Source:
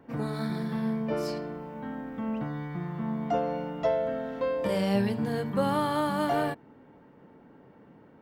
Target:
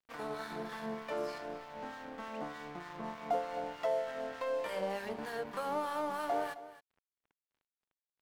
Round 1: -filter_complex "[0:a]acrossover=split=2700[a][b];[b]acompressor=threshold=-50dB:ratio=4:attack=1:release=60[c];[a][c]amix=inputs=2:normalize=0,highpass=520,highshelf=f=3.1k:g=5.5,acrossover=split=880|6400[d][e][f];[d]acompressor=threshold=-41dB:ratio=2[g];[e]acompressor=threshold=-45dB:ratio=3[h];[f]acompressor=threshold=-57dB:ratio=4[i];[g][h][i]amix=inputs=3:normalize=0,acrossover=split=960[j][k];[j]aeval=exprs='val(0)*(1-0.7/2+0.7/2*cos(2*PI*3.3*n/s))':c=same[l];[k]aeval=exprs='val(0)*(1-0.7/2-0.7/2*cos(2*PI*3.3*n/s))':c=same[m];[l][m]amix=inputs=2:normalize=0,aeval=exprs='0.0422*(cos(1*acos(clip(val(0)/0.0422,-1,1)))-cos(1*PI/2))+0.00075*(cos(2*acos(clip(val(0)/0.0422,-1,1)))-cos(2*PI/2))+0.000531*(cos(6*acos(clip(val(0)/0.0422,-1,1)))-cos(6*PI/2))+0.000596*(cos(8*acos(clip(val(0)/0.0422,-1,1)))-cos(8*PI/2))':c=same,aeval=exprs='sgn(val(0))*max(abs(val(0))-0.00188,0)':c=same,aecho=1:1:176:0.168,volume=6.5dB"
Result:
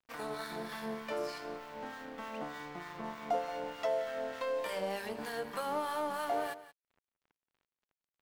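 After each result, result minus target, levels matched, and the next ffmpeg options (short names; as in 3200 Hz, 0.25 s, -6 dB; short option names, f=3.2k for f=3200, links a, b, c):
echo 88 ms early; 8000 Hz band +3.5 dB
-filter_complex "[0:a]acrossover=split=2700[a][b];[b]acompressor=threshold=-50dB:ratio=4:attack=1:release=60[c];[a][c]amix=inputs=2:normalize=0,highpass=520,highshelf=f=3.1k:g=5.5,acrossover=split=880|6400[d][e][f];[d]acompressor=threshold=-41dB:ratio=2[g];[e]acompressor=threshold=-45dB:ratio=3[h];[f]acompressor=threshold=-57dB:ratio=4[i];[g][h][i]amix=inputs=3:normalize=0,acrossover=split=960[j][k];[j]aeval=exprs='val(0)*(1-0.7/2+0.7/2*cos(2*PI*3.3*n/s))':c=same[l];[k]aeval=exprs='val(0)*(1-0.7/2-0.7/2*cos(2*PI*3.3*n/s))':c=same[m];[l][m]amix=inputs=2:normalize=0,aeval=exprs='0.0422*(cos(1*acos(clip(val(0)/0.0422,-1,1)))-cos(1*PI/2))+0.00075*(cos(2*acos(clip(val(0)/0.0422,-1,1)))-cos(2*PI/2))+0.000531*(cos(6*acos(clip(val(0)/0.0422,-1,1)))-cos(6*PI/2))+0.000596*(cos(8*acos(clip(val(0)/0.0422,-1,1)))-cos(8*PI/2))':c=same,aeval=exprs='sgn(val(0))*max(abs(val(0))-0.00188,0)':c=same,aecho=1:1:264:0.168,volume=6.5dB"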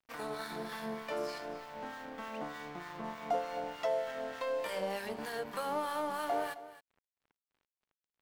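8000 Hz band +3.5 dB
-filter_complex "[0:a]acrossover=split=2700[a][b];[b]acompressor=threshold=-50dB:ratio=4:attack=1:release=60[c];[a][c]amix=inputs=2:normalize=0,highpass=520,highshelf=f=3.1k:g=-4.5,acrossover=split=880|6400[d][e][f];[d]acompressor=threshold=-41dB:ratio=2[g];[e]acompressor=threshold=-45dB:ratio=3[h];[f]acompressor=threshold=-57dB:ratio=4[i];[g][h][i]amix=inputs=3:normalize=0,acrossover=split=960[j][k];[j]aeval=exprs='val(0)*(1-0.7/2+0.7/2*cos(2*PI*3.3*n/s))':c=same[l];[k]aeval=exprs='val(0)*(1-0.7/2-0.7/2*cos(2*PI*3.3*n/s))':c=same[m];[l][m]amix=inputs=2:normalize=0,aeval=exprs='0.0422*(cos(1*acos(clip(val(0)/0.0422,-1,1)))-cos(1*PI/2))+0.00075*(cos(2*acos(clip(val(0)/0.0422,-1,1)))-cos(2*PI/2))+0.000531*(cos(6*acos(clip(val(0)/0.0422,-1,1)))-cos(6*PI/2))+0.000596*(cos(8*acos(clip(val(0)/0.0422,-1,1)))-cos(8*PI/2))':c=same,aeval=exprs='sgn(val(0))*max(abs(val(0))-0.00188,0)':c=same,aecho=1:1:264:0.168,volume=6.5dB"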